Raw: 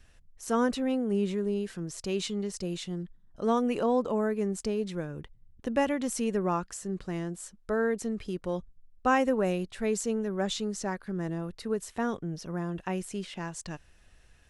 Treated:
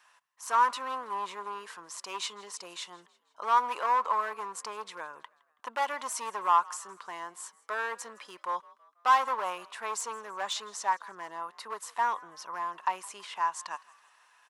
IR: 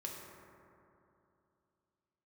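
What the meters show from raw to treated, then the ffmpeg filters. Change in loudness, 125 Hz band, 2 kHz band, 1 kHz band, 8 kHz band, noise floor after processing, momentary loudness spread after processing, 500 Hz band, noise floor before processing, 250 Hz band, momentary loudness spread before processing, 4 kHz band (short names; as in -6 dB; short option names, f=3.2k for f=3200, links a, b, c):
-1.0 dB, under -25 dB, +2.0 dB, +7.5 dB, 0.0 dB, -70 dBFS, 16 LU, -12.0 dB, -60 dBFS, -25.0 dB, 11 LU, +1.0 dB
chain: -filter_complex "[0:a]volume=25.5dB,asoftclip=hard,volume=-25.5dB,highpass=f=1k:t=q:w=7.2,asplit=4[a][b][c][d];[b]adelay=163,afreqshift=52,volume=-23dB[e];[c]adelay=326,afreqshift=104,volume=-29dB[f];[d]adelay=489,afreqshift=156,volume=-35dB[g];[a][e][f][g]amix=inputs=4:normalize=0"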